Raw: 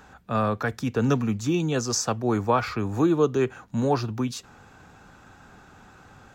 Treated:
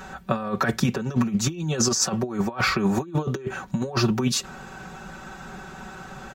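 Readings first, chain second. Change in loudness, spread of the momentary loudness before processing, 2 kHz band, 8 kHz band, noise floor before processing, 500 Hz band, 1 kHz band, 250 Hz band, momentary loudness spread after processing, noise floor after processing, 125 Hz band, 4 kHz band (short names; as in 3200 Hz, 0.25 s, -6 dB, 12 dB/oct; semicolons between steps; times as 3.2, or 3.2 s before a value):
+0.5 dB, 7 LU, +5.0 dB, +6.0 dB, -52 dBFS, -3.5 dB, -1.5 dB, +0.5 dB, 17 LU, -42 dBFS, +1.0 dB, +7.0 dB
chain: comb 5.3 ms, depth 96%; negative-ratio compressor -26 dBFS, ratio -0.5; gain +3 dB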